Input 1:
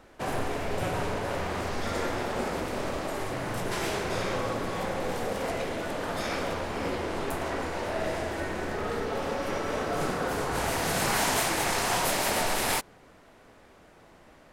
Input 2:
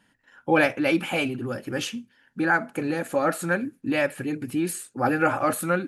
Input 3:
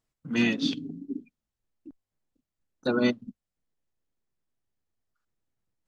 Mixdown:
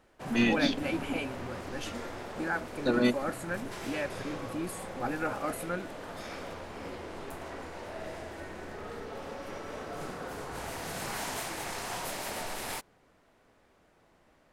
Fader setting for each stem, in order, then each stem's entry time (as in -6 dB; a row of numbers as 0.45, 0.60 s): -10.0, -11.0, -1.5 dB; 0.00, 0.00, 0.00 s